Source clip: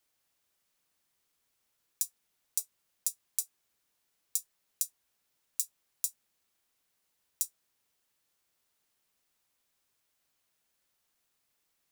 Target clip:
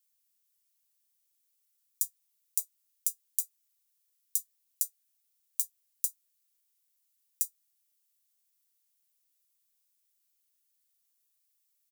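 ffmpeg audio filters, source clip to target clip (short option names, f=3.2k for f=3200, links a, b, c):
-filter_complex "[0:a]aderivative,asplit=2[a][b];[b]adelay=14,volume=-11.5dB[c];[a][c]amix=inputs=2:normalize=0,volume=-1dB"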